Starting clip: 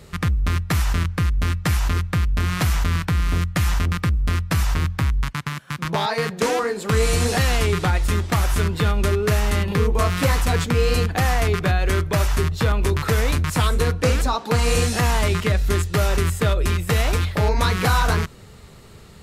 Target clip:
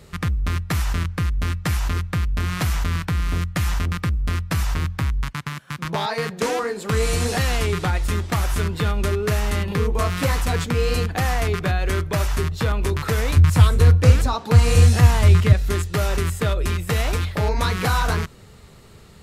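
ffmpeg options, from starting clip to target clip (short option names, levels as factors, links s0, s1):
-filter_complex "[0:a]asettb=1/sr,asplit=3[s0][s1][s2];[s0]atrim=end=13.364[s3];[s1]atrim=start=13.36:end=15.53,asetpts=PTS-STARTPTS,afade=t=in:d=0.004:c=qsin,afade=t=out:st=2.166:d=0.004:c=qsin,equalizer=f=96:t=o:w=0.93:g=15[s4];[s2]atrim=start=15.526[s5];[s3][s4]acrossfade=d=0.004:c1=hsin:c2=qsin[s6];[s6][s5]acrossfade=d=0.004:c1=qsin:c2=hsin,volume=0.794"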